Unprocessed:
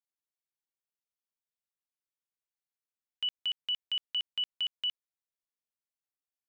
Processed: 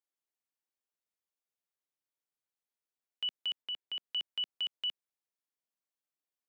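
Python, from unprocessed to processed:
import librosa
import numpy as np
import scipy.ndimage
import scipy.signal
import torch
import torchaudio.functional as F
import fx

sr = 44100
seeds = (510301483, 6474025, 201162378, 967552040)

y = scipy.signal.sosfilt(scipy.signal.butter(2, 250.0, 'highpass', fs=sr, output='sos'), x)
y = fx.tilt_shelf(y, sr, db=3.0, hz=970.0)
y = fx.lowpass(y, sr, hz=2500.0, slope=6, at=(3.62, 4.04))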